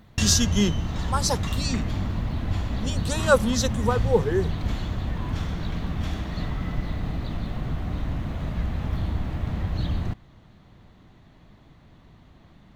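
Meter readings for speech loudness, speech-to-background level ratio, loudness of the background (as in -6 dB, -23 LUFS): -25.0 LUFS, 4.0 dB, -29.0 LUFS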